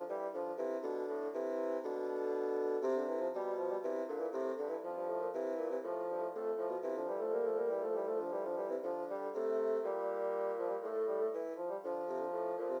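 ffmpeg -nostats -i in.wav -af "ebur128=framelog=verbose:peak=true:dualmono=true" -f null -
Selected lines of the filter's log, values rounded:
Integrated loudness:
  I:         -35.0 LUFS
  Threshold: -44.9 LUFS
Loudness range:
  LRA:         1.6 LU
  Threshold: -54.8 LUFS
  LRA low:   -35.8 LUFS
  LRA high:  -34.2 LUFS
True peak:
  Peak:      -24.5 dBFS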